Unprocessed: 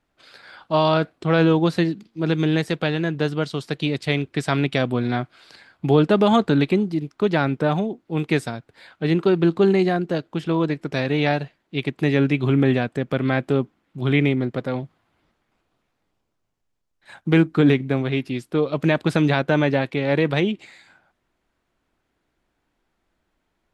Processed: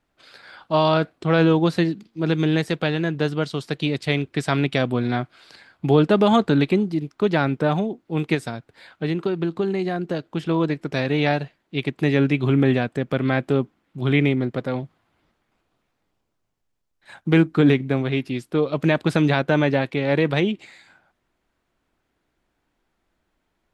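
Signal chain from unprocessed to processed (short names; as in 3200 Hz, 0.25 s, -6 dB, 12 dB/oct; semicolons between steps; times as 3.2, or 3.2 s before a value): 8.34–10.37 compressor 6:1, threshold -20 dBFS, peak gain reduction 7.5 dB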